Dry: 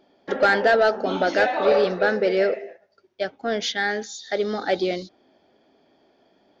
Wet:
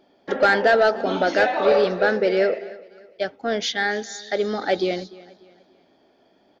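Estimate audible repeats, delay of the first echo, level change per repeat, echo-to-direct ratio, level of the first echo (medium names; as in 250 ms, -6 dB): 2, 295 ms, -8.5 dB, -20.0 dB, -20.5 dB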